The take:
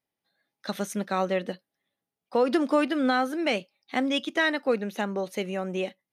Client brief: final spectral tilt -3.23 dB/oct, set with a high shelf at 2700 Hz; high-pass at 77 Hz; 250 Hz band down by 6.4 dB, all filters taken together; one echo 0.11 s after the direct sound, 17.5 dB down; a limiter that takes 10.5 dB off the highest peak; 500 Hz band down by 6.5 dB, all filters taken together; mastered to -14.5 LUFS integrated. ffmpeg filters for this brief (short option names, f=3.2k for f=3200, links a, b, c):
-af "highpass=77,equalizer=f=250:t=o:g=-6,equalizer=f=500:t=o:g=-6,highshelf=f=2.7k:g=-6,alimiter=level_in=1.5dB:limit=-24dB:level=0:latency=1,volume=-1.5dB,aecho=1:1:110:0.133,volume=22dB"